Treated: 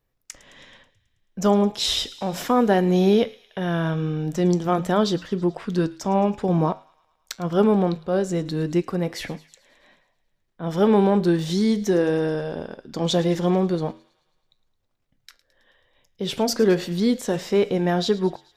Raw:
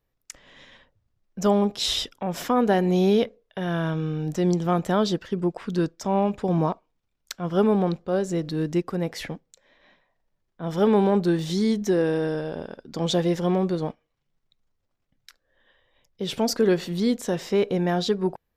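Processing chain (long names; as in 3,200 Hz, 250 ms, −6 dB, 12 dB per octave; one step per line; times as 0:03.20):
flanger 0.4 Hz, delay 7.8 ms, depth 3.8 ms, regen −82%
on a send: delay with a high-pass on its return 108 ms, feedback 62%, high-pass 1,900 Hz, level −18 dB
on the sum: level +6.5 dB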